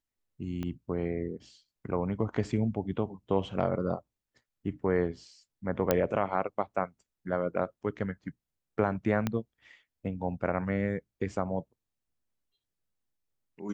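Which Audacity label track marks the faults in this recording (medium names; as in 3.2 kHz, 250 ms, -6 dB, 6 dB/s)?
0.630000	0.630000	pop -23 dBFS
5.910000	5.910000	pop -10 dBFS
9.270000	9.270000	pop -15 dBFS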